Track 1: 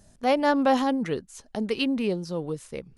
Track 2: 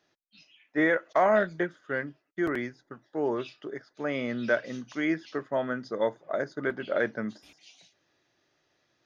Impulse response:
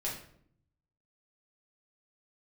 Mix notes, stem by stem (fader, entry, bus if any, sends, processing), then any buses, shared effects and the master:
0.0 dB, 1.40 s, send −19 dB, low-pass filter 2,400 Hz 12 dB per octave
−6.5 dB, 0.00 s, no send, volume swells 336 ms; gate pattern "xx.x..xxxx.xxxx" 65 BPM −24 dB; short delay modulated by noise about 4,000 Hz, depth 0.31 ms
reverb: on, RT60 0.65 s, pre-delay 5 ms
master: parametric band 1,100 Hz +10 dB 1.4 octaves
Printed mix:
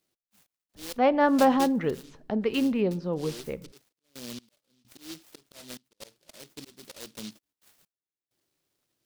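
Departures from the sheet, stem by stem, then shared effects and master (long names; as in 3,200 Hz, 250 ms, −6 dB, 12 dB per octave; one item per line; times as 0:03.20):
stem 1: entry 1.40 s → 0.75 s
master: missing parametric band 1,100 Hz +10 dB 1.4 octaves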